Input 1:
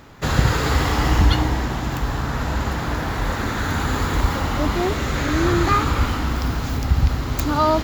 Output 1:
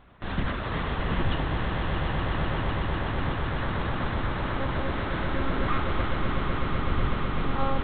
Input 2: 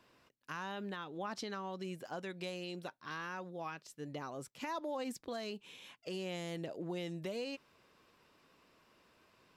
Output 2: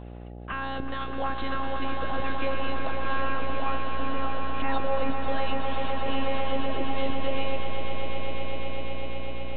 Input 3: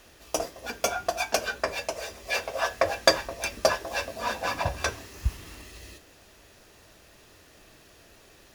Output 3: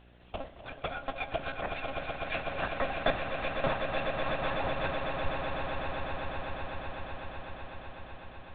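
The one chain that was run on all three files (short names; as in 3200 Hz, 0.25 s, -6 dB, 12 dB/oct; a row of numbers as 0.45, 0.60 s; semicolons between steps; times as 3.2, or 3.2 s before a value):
monotone LPC vocoder at 8 kHz 270 Hz; swelling echo 0.125 s, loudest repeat 8, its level -9 dB; buzz 60 Hz, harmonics 14, -51 dBFS -5 dB/oct; normalise peaks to -12 dBFS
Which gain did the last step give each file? -10.5, +10.5, -7.5 dB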